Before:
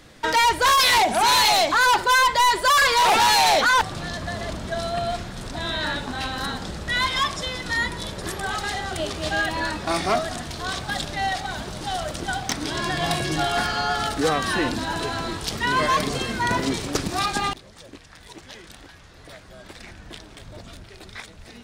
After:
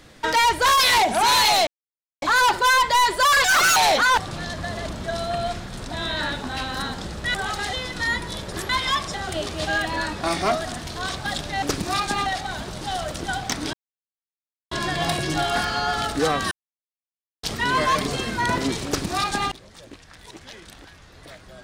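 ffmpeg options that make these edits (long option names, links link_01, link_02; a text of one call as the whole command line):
ffmpeg -i in.wav -filter_complex "[0:a]asplit=13[link_01][link_02][link_03][link_04][link_05][link_06][link_07][link_08][link_09][link_10][link_11][link_12][link_13];[link_01]atrim=end=1.67,asetpts=PTS-STARTPTS,afade=type=out:start_time=1.666:duration=0.004:curve=hsin,apad=pad_dur=0.55[link_14];[link_02]atrim=start=1.67:end=2.894,asetpts=PTS-STARTPTS,afade=type=in:duration=0.004:curve=hsin[link_15];[link_03]atrim=start=2.89:end=3.4,asetpts=PTS-STARTPTS,asetrate=69678,aresample=44100[link_16];[link_04]atrim=start=3.396:end=6.982[link_17];[link_05]atrim=start=8.388:end=8.782[link_18];[link_06]atrim=start=7.428:end=8.392[link_19];[link_07]atrim=start=6.978:end=7.432[link_20];[link_08]atrim=start=8.778:end=11.262[link_21];[link_09]atrim=start=16.878:end=17.522[link_22];[link_10]atrim=start=11.258:end=12.73,asetpts=PTS-STARTPTS,afade=type=out:start_time=1.468:duration=0.004:curve=hsin,apad=pad_dur=0.98[link_23];[link_11]atrim=start=12.73:end=14.53,asetpts=PTS-STARTPTS,afade=type=in:duration=0.004:curve=hsin,afade=type=out:start_time=1.796:duration=0.004:curve=hsin[link_24];[link_12]atrim=start=14.53:end=15.45,asetpts=PTS-STARTPTS,volume=0[link_25];[link_13]atrim=start=15.45,asetpts=PTS-STARTPTS,afade=type=in:duration=0.004:curve=hsin[link_26];[link_14][link_15]concat=n=2:v=0:a=1[link_27];[link_27][link_16]acrossfade=duration=0.004:curve1=hsin:curve2=hsin[link_28];[link_28][link_17]acrossfade=duration=0.004:curve1=hsin:curve2=hsin[link_29];[link_29][link_18]acrossfade=duration=0.004:curve1=hsin:curve2=hsin[link_30];[link_30][link_19]acrossfade=duration=0.004:curve1=hsin:curve2=hsin[link_31];[link_31][link_20]acrossfade=duration=0.004:curve1=hsin:curve2=hsin[link_32];[link_32][link_21]acrossfade=duration=0.004:curve1=hsin:curve2=hsin[link_33];[link_33][link_22]acrossfade=duration=0.004:curve1=hsin:curve2=hsin[link_34];[link_23][link_24][link_25][link_26]concat=n=4:v=0:a=1[link_35];[link_34][link_35]acrossfade=duration=0.004:curve1=hsin:curve2=hsin" out.wav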